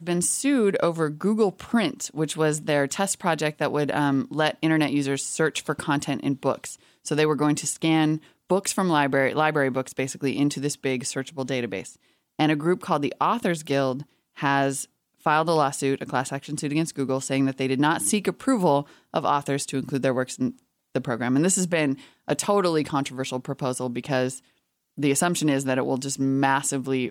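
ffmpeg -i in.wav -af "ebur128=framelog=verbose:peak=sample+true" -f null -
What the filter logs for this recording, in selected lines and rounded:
Integrated loudness:
  I:         -24.5 LUFS
  Threshold: -34.7 LUFS
Loudness range:
  LRA:         2.4 LU
  Threshold: -44.8 LUFS
  LRA low:   -26.1 LUFS
  LRA high:  -23.7 LUFS
Sample peak:
  Peak:       -9.1 dBFS
True peak:
  Peak:       -9.1 dBFS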